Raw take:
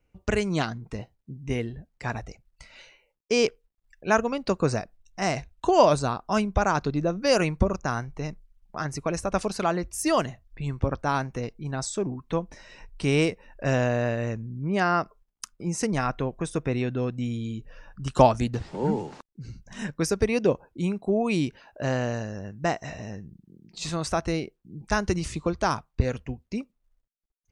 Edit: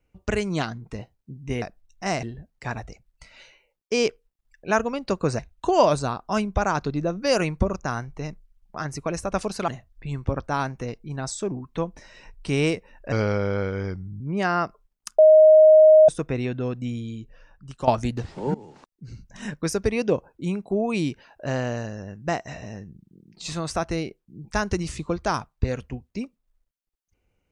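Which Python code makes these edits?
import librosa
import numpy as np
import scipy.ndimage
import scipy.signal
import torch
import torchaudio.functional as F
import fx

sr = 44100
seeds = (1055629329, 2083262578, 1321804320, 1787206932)

y = fx.edit(x, sr, fx.move(start_s=4.78, length_s=0.61, to_s=1.62),
    fx.cut(start_s=9.68, length_s=0.55),
    fx.speed_span(start_s=13.67, length_s=0.9, speed=0.83),
    fx.bleep(start_s=15.55, length_s=0.9, hz=624.0, db=-8.5),
    fx.fade_out_to(start_s=17.25, length_s=0.99, floor_db=-13.5),
    fx.fade_in_from(start_s=18.91, length_s=0.57, floor_db=-20.0), tone=tone)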